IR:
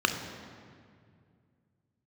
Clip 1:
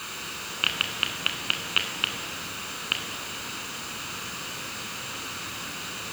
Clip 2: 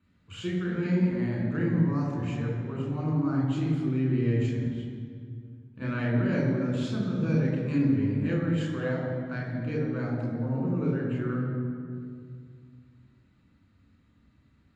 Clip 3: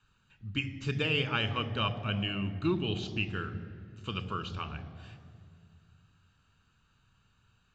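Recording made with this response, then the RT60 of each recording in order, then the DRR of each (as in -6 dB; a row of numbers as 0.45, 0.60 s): 1; 2.2, 2.2, 2.2 s; 5.0, -3.0, 11.0 dB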